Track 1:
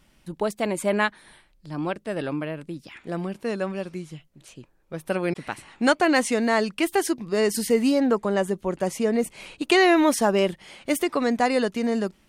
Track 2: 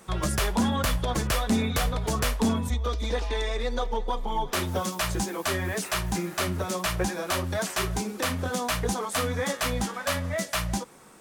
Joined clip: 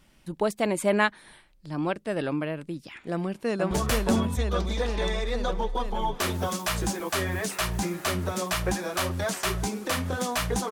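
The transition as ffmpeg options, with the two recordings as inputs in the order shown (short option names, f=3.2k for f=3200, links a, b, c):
-filter_complex "[0:a]apad=whole_dur=10.71,atrim=end=10.71,atrim=end=3.712[a];[1:a]atrim=start=2.038:end=9.04[b];[a][b]acrossfade=d=0.004:c1=hsin:c2=hsin,asplit=2[c][d];[d]afade=t=in:st=3.12:d=0.01,afade=t=out:st=3.71:d=0.01,aecho=0:1:470|940|1410|1880|2350|2820|3290|3760|4230|4700|5170|5640:0.749894|0.562421|0.421815|0.316362|0.237271|0.177953|0.133465|0.100099|0.0750741|0.0563056|0.0422292|0.0316719[e];[c][e]amix=inputs=2:normalize=0"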